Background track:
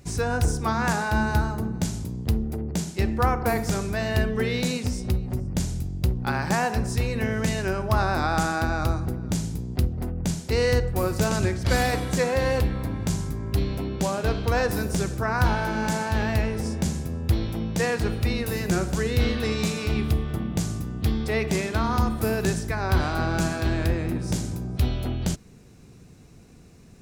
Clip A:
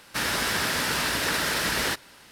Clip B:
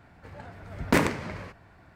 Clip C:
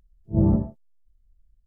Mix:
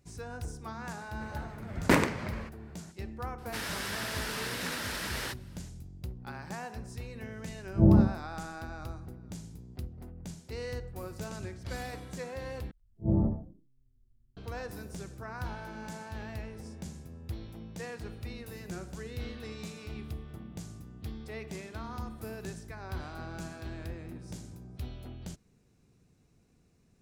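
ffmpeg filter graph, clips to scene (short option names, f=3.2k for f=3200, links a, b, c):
-filter_complex "[3:a]asplit=2[a][b];[0:a]volume=-16.5dB[c];[b]asplit=4[d][e][f][g];[e]adelay=86,afreqshift=-130,volume=-12dB[h];[f]adelay=172,afreqshift=-260,volume=-21.9dB[i];[g]adelay=258,afreqshift=-390,volume=-31.8dB[j];[d][h][i][j]amix=inputs=4:normalize=0[k];[c]asplit=2[l][m];[l]atrim=end=12.714[n];[k]atrim=end=1.66,asetpts=PTS-STARTPTS,volume=-7dB[o];[m]atrim=start=14.366[p];[2:a]atrim=end=1.95,asetpts=PTS-STARTPTS,volume=-1.5dB,afade=t=in:d=0.004:c=hsin,afade=t=out:st=1.946:d=0.004:c=hsin,adelay=970[q];[1:a]atrim=end=2.31,asetpts=PTS-STARTPTS,volume=-10.5dB,afade=t=in:d=0.004:c=hsin,afade=t=out:st=2.306:d=0.004:c=hsin,adelay=3380[r];[a]atrim=end=1.66,asetpts=PTS-STARTPTS,volume=-0.5dB,afade=t=in:d=0.004:c=hsin,afade=t=out:st=1.656:d=0.004:c=hsin,adelay=7450[s];[n][o]acrossfade=d=0.004:c1=hsin:c2=hsin[t];[t][p]acrossfade=d=0.004:c1=hsin:c2=hsin[u];[u][q][r][s]amix=inputs=4:normalize=0"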